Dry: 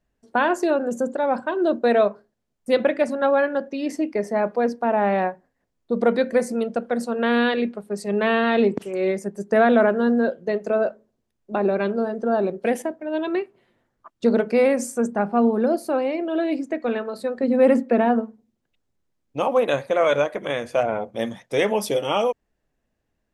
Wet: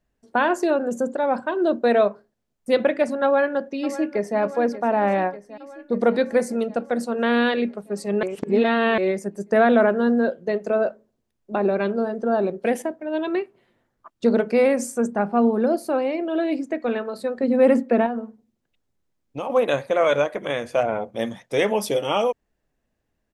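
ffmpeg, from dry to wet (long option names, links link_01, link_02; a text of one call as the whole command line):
ffmpeg -i in.wav -filter_complex "[0:a]asplit=2[link_01][link_02];[link_02]afade=type=in:start_time=3.24:duration=0.01,afade=type=out:start_time=4.39:duration=0.01,aecho=0:1:590|1180|1770|2360|2950|3540|4130|4720|5310:0.199526|0.139668|0.0977679|0.0684375|0.0479062|0.0335344|0.0234741|0.0164318|0.0115023[link_03];[link_01][link_03]amix=inputs=2:normalize=0,asettb=1/sr,asplit=3[link_04][link_05][link_06];[link_04]atrim=end=18.064[link_07];[link_05]atrim=start=18.06:end=19.5,asetpts=PTS-STARTPTS,afade=type=in:duration=0.004:curve=qsin,afade=type=out:start_time=1.436:duration=0.004:curve=qsin,acompressor=threshold=-26dB:ratio=3:attack=3.2:release=140:knee=1:detection=peak[link_08];[link_06]atrim=start=19.496[link_09];[link_07][link_08]acrossfade=duration=0.004:curve1=hsin:curve2=qsin[link_10];[link_10][link_09]acrossfade=duration=0.004:curve1=qsin:curve2=hsin,asplit=3[link_11][link_12][link_13];[link_11]atrim=end=8.232[link_14];[link_12]atrim=start=8.228:end=8.982,asetpts=PTS-STARTPTS,areverse[link_15];[link_13]atrim=start=8.978[link_16];[link_14][link_15]acrossfade=duration=0.004:curve1=hsin:curve2=hsin[link_17];[link_17][link_16]acrossfade=duration=0.004:curve1=hsin:curve2=hsin" out.wav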